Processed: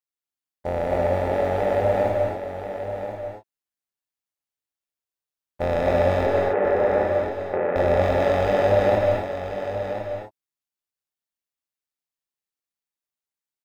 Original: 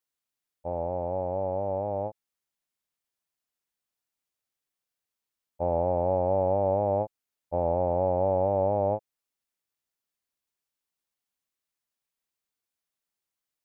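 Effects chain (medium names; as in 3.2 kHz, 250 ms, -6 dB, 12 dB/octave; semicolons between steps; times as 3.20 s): waveshaping leveller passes 3; AM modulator 140 Hz, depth 50%; 6.26–7.76 s: cabinet simulation 230–2100 Hz, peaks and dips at 270 Hz -5 dB, 390 Hz +8 dB, 660 Hz -5 dB; delay 1034 ms -9 dB; gated-style reverb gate 290 ms rising, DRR 0 dB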